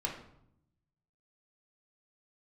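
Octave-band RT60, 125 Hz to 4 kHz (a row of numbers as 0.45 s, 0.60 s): 1.4 s, 1.1 s, 0.75 s, 0.70 s, 0.55 s, 0.50 s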